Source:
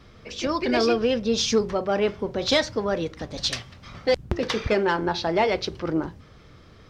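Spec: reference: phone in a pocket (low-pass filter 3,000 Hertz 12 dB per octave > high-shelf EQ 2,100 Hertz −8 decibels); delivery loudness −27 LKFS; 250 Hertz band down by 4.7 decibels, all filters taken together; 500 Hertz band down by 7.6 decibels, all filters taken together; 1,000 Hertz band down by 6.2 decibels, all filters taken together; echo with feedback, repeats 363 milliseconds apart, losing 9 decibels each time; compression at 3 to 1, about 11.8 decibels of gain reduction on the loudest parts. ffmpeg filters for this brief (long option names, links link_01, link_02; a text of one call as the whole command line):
ffmpeg -i in.wav -af "equalizer=frequency=250:width_type=o:gain=-3.5,equalizer=frequency=500:width_type=o:gain=-7,equalizer=frequency=1000:width_type=o:gain=-3.5,acompressor=threshold=-36dB:ratio=3,lowpass=3000,highshelf=frequency=2100:gain=-8,aecho=1:1:363|726|1089|1452:0.355|0.124|0.0435|0.0152,volume=12.5dB" out.wav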